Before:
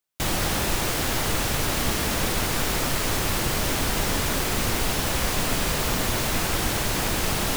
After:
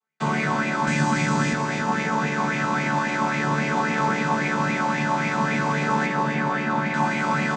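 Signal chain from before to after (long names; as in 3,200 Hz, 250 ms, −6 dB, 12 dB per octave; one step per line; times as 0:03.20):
channel vocoder with a chord as carrier major triad, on D3
0:00.87–0:01.53: bass and treble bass +10 dB, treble +11 dB
speech leveller 2 s
0:06.06–0:06.94: high-frequency loss of the air 140 metres
repeating echo 283 ms, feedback 57%, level −7 dB
convolution reverb RT60 0.25 s, pre-delay 4 ms, DRR 3 dB
auto-filter bell 3.7 Hz 980–2,300 Hz +16 dB
level −2 dB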